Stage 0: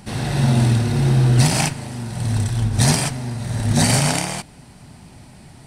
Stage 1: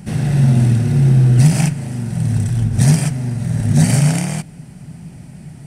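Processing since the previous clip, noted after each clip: fifteen-band graphic EQ 160 Hz +12 dB, 1 kHz -7 dB, 4 kHz -8 dB; in parallel at -0.5 dB: compression, threshold -19 dBFS, peak gain reduction 14 dB; on the sum: trim -4 dB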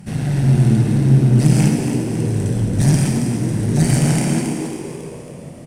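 valve stage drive 6 dB, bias 0.5; frequency-shifting echo 274 ms, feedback 52%, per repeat +83 Hz, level -8 dB; reverberation RT60 1.3 s, pre-delay 58 ms, DRR 4 dB; trim -1 dB

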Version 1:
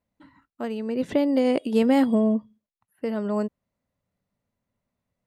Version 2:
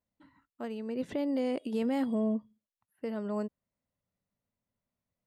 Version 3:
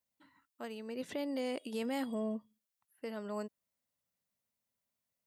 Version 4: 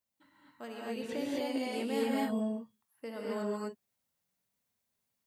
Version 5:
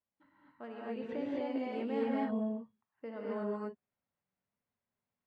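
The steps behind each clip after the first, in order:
peak limiter -15.5 dBFS, peak gain reduction 5 dB; trim -8 dB
tilt EQ +2.5 dB/octave; trim -2.5 dB
gated-style reverb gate 280 ms rising, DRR -5 dB; trim -1.5 dB
low-pass 1.9 kHz 12 dB/octave; trim -1.5 dB

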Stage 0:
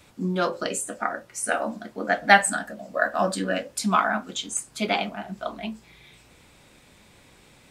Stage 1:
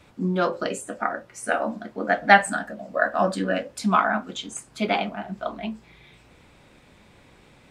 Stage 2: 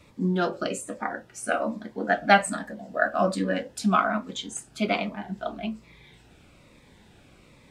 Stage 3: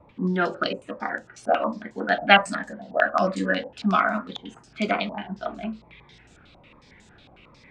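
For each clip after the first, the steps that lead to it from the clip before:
treble shelf 4.5 kHz -12 dB; trim +2 dB
Shepard-style phaser falling 1.2 Hz
step-sequenced low-pass 11 Hz 830–7200 Hz

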